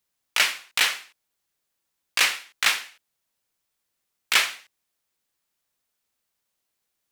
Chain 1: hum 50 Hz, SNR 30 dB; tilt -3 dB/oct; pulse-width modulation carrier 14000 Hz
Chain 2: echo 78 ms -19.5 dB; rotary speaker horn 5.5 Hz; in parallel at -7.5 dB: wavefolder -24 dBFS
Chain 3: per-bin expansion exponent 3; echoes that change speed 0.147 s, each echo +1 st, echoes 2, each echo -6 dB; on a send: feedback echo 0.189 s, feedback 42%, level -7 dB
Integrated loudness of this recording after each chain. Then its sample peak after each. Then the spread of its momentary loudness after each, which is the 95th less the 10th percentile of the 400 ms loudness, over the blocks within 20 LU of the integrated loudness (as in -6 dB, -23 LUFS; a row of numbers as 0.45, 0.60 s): -28.5, -25.0, -28.5 LUFS; -9.0, -6.0, -9.0 dBFS; 6, 11, 17 LU